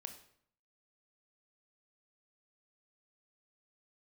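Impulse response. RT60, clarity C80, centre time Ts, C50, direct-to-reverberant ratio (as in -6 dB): 0.65 s, 13.0 dB, 14 ms, 9.5 dB, 6.0 dB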